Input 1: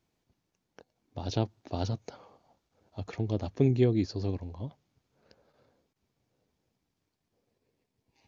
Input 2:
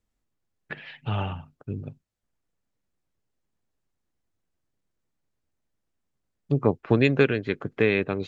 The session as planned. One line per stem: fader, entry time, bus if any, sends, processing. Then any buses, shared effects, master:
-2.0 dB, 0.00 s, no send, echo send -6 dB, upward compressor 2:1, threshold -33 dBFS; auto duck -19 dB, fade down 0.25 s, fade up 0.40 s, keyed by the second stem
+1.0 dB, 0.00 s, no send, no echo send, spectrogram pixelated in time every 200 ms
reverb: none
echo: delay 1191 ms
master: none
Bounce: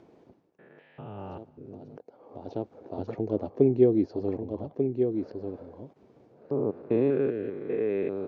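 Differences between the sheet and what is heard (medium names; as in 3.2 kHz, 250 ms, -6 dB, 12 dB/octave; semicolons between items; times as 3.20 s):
stem 1 -2.0 dB -> +7.0 dB; master: extra band-pass filter 420 Hz, Q 1.3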